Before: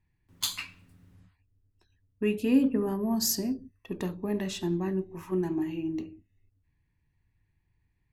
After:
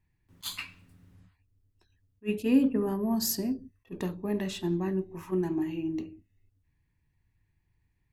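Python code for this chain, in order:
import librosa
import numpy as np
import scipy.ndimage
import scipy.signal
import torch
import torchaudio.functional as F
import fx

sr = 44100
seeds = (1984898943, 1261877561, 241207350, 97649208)

y = fx.dynamic_eq(x, sr, hz=6100.0, q=1.7, threshold_db=-48.0, ratio=4.0, max_db=-5)
y = fx.attack_slew(y, sr, db_per_s=450.0)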